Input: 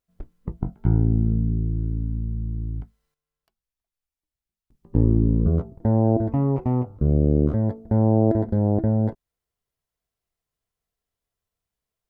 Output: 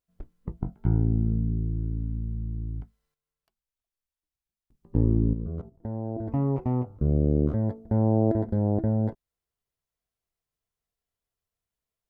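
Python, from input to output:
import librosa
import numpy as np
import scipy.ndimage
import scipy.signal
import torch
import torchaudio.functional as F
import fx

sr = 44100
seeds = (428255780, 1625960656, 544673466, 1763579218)

y = fx.median_filter(x, sr, points=25, at=(1.99, 2.56))
y = fx.level_steps(y, sr, step_db=14, at=(5.33, 6.28))
y = y * 10.0 ** (-4.0 / 20.0)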